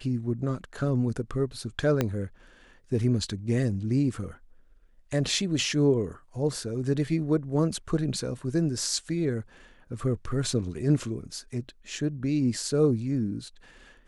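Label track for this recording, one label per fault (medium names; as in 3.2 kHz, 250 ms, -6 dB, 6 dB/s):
2.010000	2.010000	pop -11 dBFS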